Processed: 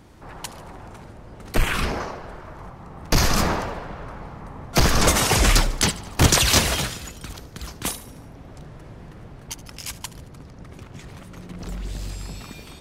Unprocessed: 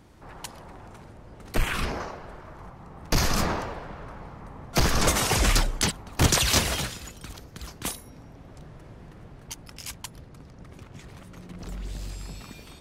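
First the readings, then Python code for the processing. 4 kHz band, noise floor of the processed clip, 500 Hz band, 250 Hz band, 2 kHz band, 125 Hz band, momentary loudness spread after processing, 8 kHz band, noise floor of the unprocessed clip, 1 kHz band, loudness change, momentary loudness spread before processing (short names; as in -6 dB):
+4.5 dB, -44 dBFS, +4.5 dB, +4.5 dB, +4.5 dB, +4.5 dB, 23 LU, +4.5 dB, -49 dBFS, +4.5 dB, +4.5 dB, 23 LU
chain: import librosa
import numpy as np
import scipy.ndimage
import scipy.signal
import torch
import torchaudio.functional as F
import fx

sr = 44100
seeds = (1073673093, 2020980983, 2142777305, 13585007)

y = fx.echo_feedback(x, sr, ms=74, feedback_pct=55, wet_db=-18)
y = F.gain(torch.from_numpy(y), 4.5).numpy()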